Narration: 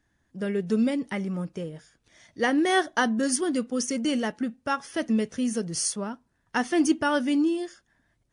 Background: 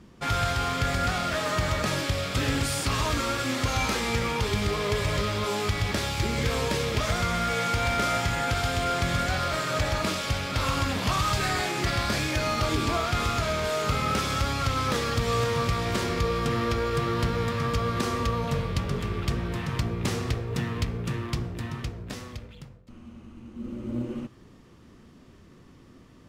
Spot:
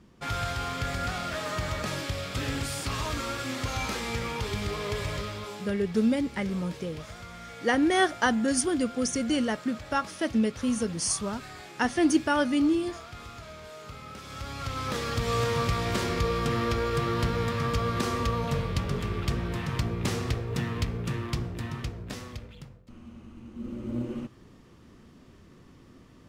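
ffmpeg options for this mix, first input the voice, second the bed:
-filter_complex "[0:a]adelay=5250,volume=-0.5dB[a];[1:a]volume=11dB,afade=t=out:st=5.03:d=0.71:silence=0.251189,afade=t=in:st=14.21:d=1.26:silence=0.158489[b];[a][b]amix=inputs=2:normalize=0"

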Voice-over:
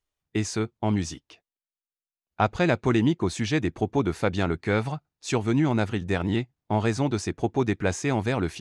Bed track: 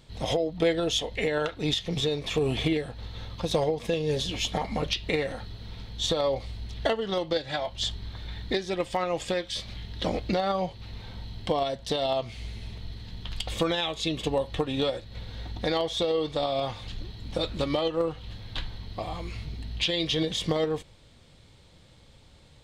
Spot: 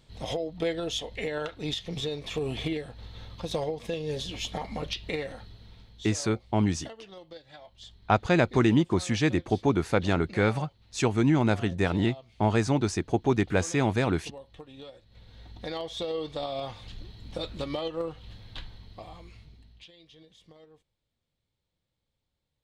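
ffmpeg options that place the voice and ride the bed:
-filter_complex "[0:a]adelay=5700,volume=0dB[a];[1:a]volume=8dB,afade=t=out:st=5.19:d=0.94:silence=0.211349,afade=t=in:st=14.94:d=1.21:silence=0.223872,afade=t=out:st=18.3:d=1.62:silence=0.0749894[b];[a][b]amix=inputs=2:normalize=0"

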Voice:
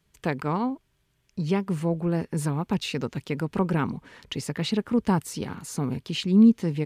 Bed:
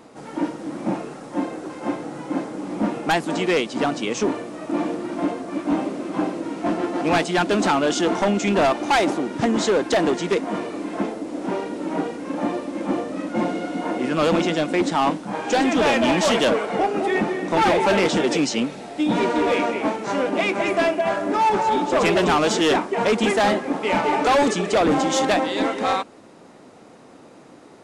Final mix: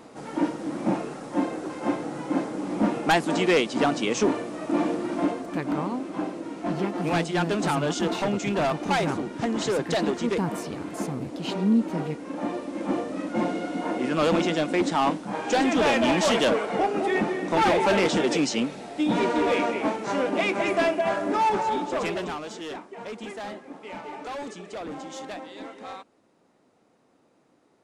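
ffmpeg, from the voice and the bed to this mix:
-filter_complex "[0:a]adelay=5300,volume=-5dB[a];[1:a]volume=3dB,afade=t=out:st=5.15:d=0.51:silence=0.501187,afade=t=in:st=12.31:d=0.65:silence=0.668344,afade=t=out:st=21.34:d=1.1:silence=0.188365[b];[a][b]amix=inputs=2:normalize=0"

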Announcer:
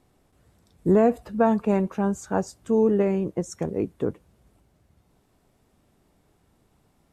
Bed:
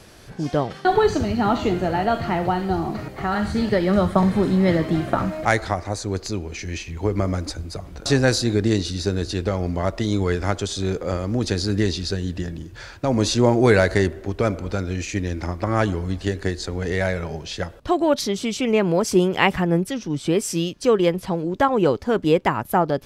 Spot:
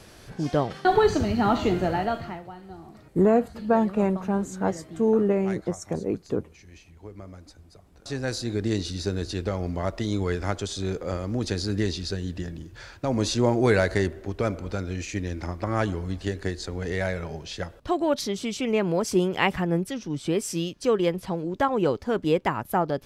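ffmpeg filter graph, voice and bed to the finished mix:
-filter_complex "[0:a]adelay=2300,volume=-1dB[a];[1:a]volume=13dB,afade=t=out:st=1.85:d=0.58:silence=0.125893,afade=t=in:st=7.91:d=0.95:silence=0.177828[b];[a][b]amix=inputs=2:normalize=0"

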